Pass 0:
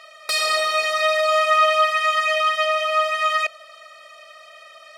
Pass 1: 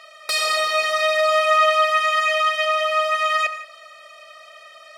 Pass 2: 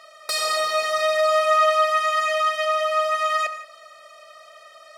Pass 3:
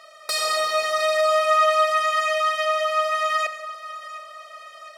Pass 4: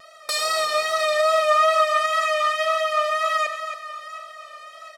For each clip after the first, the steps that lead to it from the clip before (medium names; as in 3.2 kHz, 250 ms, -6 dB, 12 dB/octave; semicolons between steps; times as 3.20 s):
high-pass 58 Hz; gated-style reverb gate 200 ms flat, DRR 10.5 dB
peaking EQ 2.6 kHz -7.5 dB 1 oct
two-band feedback delay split 1.1 kHz, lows 283 ms, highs 712 ms, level -16 dB
wow and flutter 43 cents; delay 274 ms -10 dB